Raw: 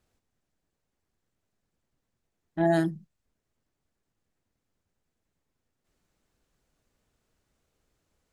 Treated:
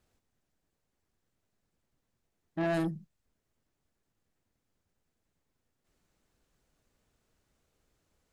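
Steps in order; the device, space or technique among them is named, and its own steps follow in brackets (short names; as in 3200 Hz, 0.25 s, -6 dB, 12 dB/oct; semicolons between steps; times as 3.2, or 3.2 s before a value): saturation between pre-emphasis and de-emphasis (high shelf 5300 Hz +8.5 dB; soft clip -26.5 dBFS, distortion -9 dB; high shelf 5300 Hz -8.5 dB)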